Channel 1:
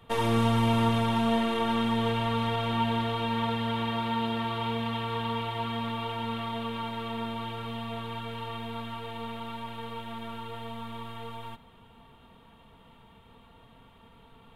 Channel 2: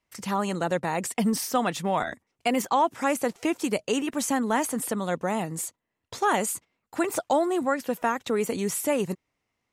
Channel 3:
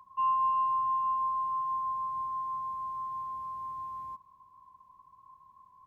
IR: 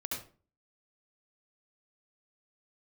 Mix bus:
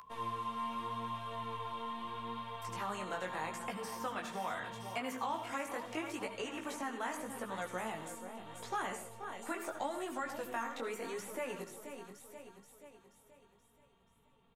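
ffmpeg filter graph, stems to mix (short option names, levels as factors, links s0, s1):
-filter_complex "[0:a]flanger=delay=4:depth=1.3:regen=-87:speed=1.1:shape=triangular,volume=0.316,asplit=2[s0][s1];[s1]volume=0.531[s2];[1:a]lowshelf=f=230:g=-12,adelay=2500,volume=0.596,asplit=3[s3][s4][s5];[s4]volume=0.376[s6];[s5]volume=0.237[s7];[2:a]acompressor=mode=upward:threshold=0.0282:ratio=2.5,volume=0.355[s8];[3:a]atrim=start_sample=2205[s9];[s6][s9]afir=irnorm=-1:irlink=0[s10];[s2][s7]amix=inputs=2:normalize=0,aecho=0:1:480|960|1440|1920|2400|2880|3360:1|0.5|0.25|0.125|0.0625|0.0312|0.0156[s11];[s0][s3][s8][s10][s11]amix=inputs=5:normalize=0,acrossover=split=320|1100|2300[s12][s13][s14][s15];[s12]acompressor=threshold=0.00501:ratio=4[s16];[s13]acompressor=threshold=0.01:ratio=4[s17];[s14]acompressor=threshold=0.0141:ratio=4[s18];[s15]acompressor=threshold=0.00355:ratio=4[s19];[s16][s17][s18][s19]amix=inputs=4:normalize=0,flanger=delay=15.5:depth=6.3:speed=0.79"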